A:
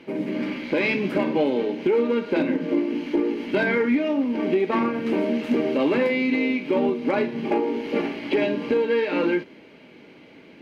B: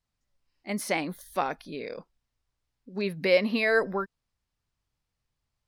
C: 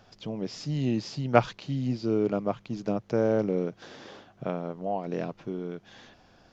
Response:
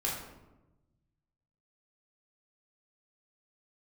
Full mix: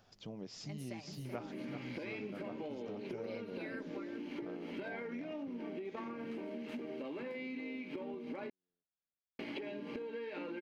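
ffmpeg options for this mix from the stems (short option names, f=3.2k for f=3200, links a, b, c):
-filter_complex "[0:a]acompressor=threshold=-27dB:ratio=6,adelay=1250,volume=-3.5dB,asplit=3[a][b][c];[a]atrim=end=8.5,asetpts=PTS-STARTPTS,afade=t=out:st=8.496:d=0.004:c=hsin[d];[b]atrim=start=8.5:end=9.39,asetpts=PTS-STARTPTS,volume=0[e];[c]atrim=start=9.39,asetpts=PTS-STARTPTS,afade=t=in:d=0.004:c=hsin[f];[d][e][f]concat=n=3:v=0:a=1[g];[1:a]aecho=1:1:5.1:0.87,volume=-16.5dB,asplit=2[h][i];[i]volume=-11.5dB[j];[2:a]highshelf=f=8.4k:g=9.5,volume=-10dB,asplit=2[k][l];[l]volume=-12.5dB[m];[j][m]amix=inputs=2:normalize=0,aecho=0:1:381|762|1143|1524|1905|2286|2667|3048:1|0.56|0.314|0.176|0.0983|0.0551|0.0308|0.0173[n];[g][h][k][n]amix=inputs=4:normalize=0,acompressor=threshold=-42dB:ratio=4"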